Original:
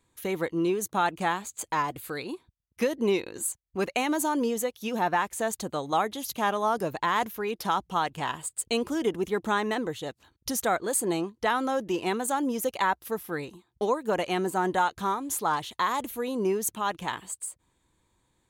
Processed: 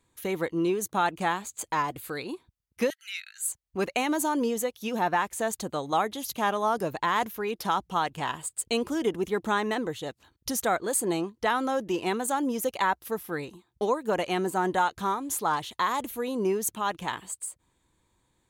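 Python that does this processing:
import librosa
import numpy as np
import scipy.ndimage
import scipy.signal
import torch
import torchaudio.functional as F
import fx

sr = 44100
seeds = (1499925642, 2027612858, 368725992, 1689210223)

y = fx.brickwall_highpass(x, sr, low_hz=1300.0, at=(2.9, 3.47))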